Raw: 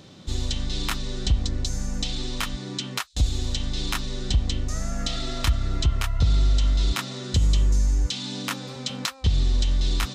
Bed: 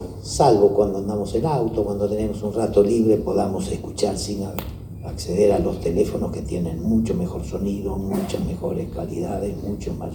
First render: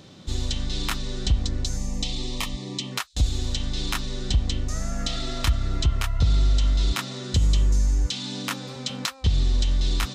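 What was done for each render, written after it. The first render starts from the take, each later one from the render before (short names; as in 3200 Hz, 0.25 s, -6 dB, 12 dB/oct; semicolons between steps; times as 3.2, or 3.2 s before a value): 1.77–2.92 Butterworth band-stop 1500 Hz, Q 2.4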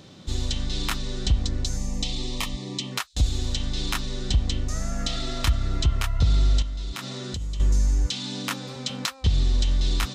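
6.62–7.6 compressor, threshold -28 dBFS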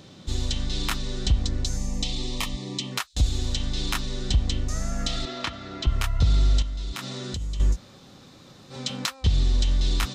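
5.25–5.87 BPF 230–4300 Hz; 7.74–8.72 room tone, crossfade 0.06 s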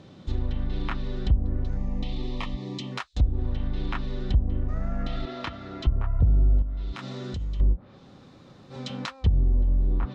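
LPF 1600 Hz 6 dB/oct; treble ducked by the level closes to 640 Hz, closed at -18 dBFS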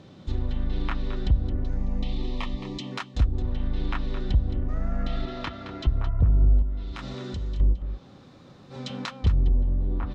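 echo 0.218 s -11 dB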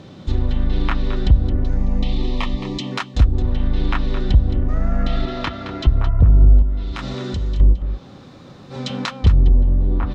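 gain +8.5 dB; limiter -3 dBFS, peak gain reduction 1 dB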